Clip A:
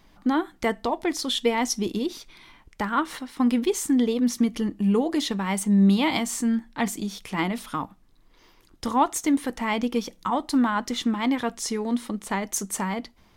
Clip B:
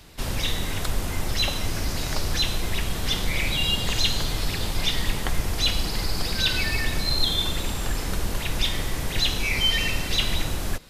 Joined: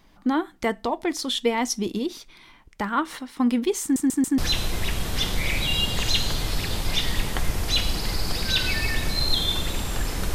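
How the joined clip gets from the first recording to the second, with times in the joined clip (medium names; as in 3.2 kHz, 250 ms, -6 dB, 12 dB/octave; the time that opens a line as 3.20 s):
clip A
3.82 s: stutter in place 0.14 s, 4 plays
4.38 s: go over to clip B from 2.28 s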